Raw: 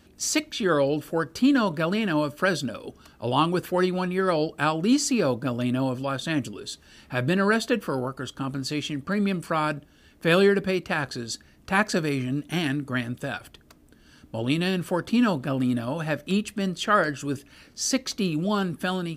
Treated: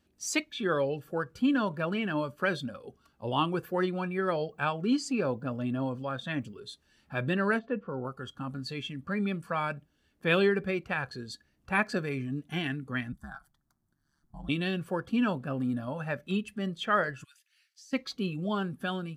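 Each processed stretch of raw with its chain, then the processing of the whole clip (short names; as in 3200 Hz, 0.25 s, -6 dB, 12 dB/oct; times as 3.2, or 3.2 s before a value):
4.37–6.58 high shelf 10000 Hz -9 dB + requantised 12-bit, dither none
7.59–8.05 de-esser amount 70% + tape spacing loss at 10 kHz 39 dB
13.12–14.49 ring modulator 71 Hz + fixed phaser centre 1100 Hz, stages 4
17.24–17.93 inverse Chebyshev high-pass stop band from 390 Hz, stop band 70 dB + compressor 16:1, threshold -34 dBFS
whole clip: spectral noise reduction 10 dB; dynamic EQ 2300 Hz, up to +6 dB, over -47 dBFS, Q 3; gain -6 dB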